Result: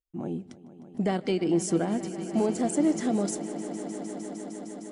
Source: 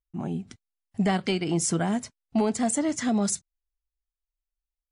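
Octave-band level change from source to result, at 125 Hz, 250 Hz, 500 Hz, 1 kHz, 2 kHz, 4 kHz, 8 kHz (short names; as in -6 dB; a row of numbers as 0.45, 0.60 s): -3.5, 0.0, +1.5, -3.5, -6.0, -6.0, -6.5 dB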